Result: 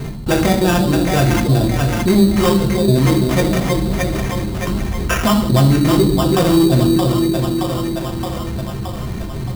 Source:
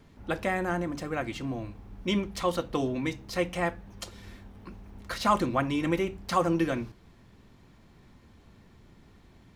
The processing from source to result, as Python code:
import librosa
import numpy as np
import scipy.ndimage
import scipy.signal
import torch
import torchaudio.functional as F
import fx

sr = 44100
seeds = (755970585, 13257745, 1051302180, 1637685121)

y = fx.env_lowpass_down(x, sr, base_hz=930.0, full_db=-22.5)
y = fx.step_gate(y, sr, bpm=172, pattern='x..xxx.xx.', floor_db=-24.0, edge_ms=4.5)
y = fx.echo_split(y, sr, split_hz=590.0, low_ms=327, high_ms=621, feedback_pct=52, wet_db=-8)
y = np.clip(y, -10.0 ** (-25.5 / 20.0), 10.0 ** (-25.5 / 20.0))
y = fx.low_shelf(y, sr, hz=350.0, db=6.5)
y = fx.rev_fdn(y, sr, rt60_s=0.53, lf_ratio=1.55, hf_ratio=0.6, size_ms=45.0, drr_db=0.0)
y = fx.sample_hold(y, sr, seeds[0], rate_hz=4200.0, jitter_pct=0)
y = fx.env_flatten(y, sr, amount_pct=50)
y = y * 10.0 ** (6.5 / 20.0)